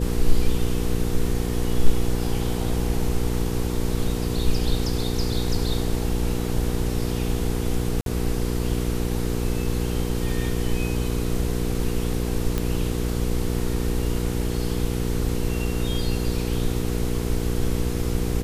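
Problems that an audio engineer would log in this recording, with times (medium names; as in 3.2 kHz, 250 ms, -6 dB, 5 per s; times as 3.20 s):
hum 60 Hz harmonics 8 -26 dBFS
8.01–8.06 s: dropout 52 ms
12.58 s: pop -10 dBFS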